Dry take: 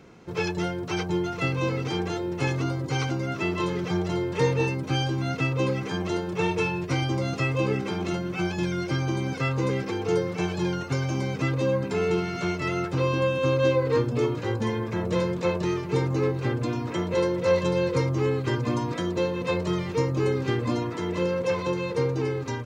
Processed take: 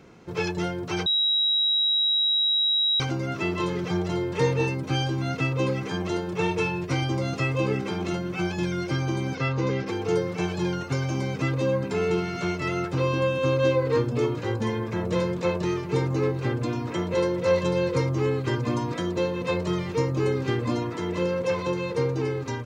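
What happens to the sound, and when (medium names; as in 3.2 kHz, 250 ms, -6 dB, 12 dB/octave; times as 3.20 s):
1.06–3.00 s: bleep 3.85 kHz -19.5 dBFS
9.35–9.87 s: steep low-pass 6.5 kHz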